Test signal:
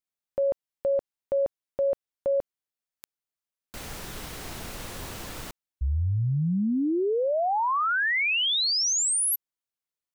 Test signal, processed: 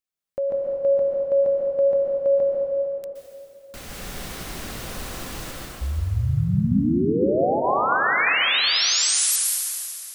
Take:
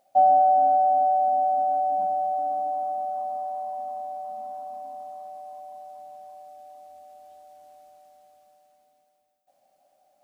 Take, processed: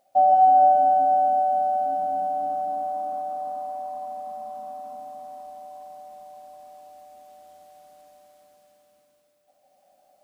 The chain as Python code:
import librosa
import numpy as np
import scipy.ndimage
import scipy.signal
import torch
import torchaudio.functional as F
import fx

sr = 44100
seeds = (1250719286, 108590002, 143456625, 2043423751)

y = fx.notch(x, sr, hz=900.0, q=9.9)
y = fx.rev_plate(y, sr, seeds[0], rt60_s=2.9, hf_ratio=0.85, predelay_ms=110, drr_db=-3.0)